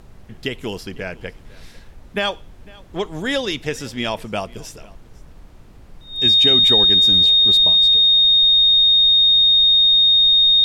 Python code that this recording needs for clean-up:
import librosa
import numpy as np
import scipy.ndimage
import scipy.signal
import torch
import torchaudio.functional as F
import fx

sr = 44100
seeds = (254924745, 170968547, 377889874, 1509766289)

y = fx.notch(x, sr, hz=3700.0, q=30.0)
y = fx.noise_reduce(y, sr, print_start_s=5.42, print_end_s=5.92, reduce_db=21.0)
y = fx.fix_echo_inverse(y, sr, delay_ms=501, level_db=-23.5)